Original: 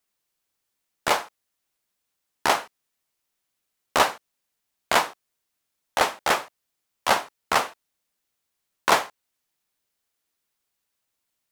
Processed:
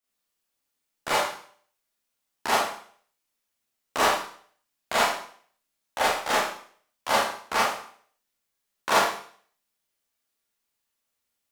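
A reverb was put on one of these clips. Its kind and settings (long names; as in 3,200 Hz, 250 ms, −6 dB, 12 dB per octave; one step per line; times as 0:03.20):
four-comb reverb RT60 0.52 s, combs from 27 ms, DRR −8 dB
level −9.5 dB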